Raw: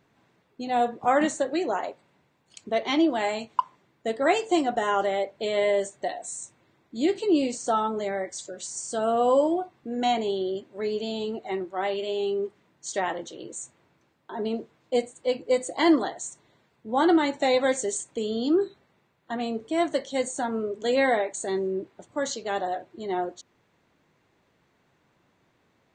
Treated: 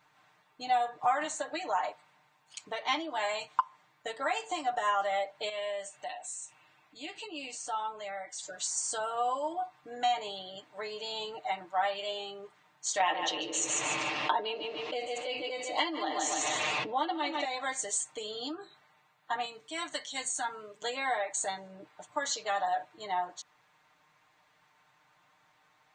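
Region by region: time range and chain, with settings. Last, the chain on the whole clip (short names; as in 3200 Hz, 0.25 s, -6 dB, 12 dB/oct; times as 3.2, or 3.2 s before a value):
5.49–8.43 bell 2700 Hz +9.5 dB 0.28 oct + compressor 1.5:1, threshold -53 dBFS
13–17.45 speaker cabinet 130–5600 Hz, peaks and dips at 160 Hz -8 dB, 320 Hz +6 dB, 530 Hz +5 dB, 930 Hz -4 dB, 1500 Hz -9 dB, 2700 Hz +9 dB + feedback echo 0.147 s, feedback 22%, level -11.5 dB + fast leveller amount 70%
19.45–20.82 HPF 150 Hz + bell 640 Hz -10 dB 2.5 oct
whole clip: compressor 5:1, threshold -28 dBFS; resonant low shelf 590 Hz -12 dB, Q 1.5; comb 6.6 ms, depth 89%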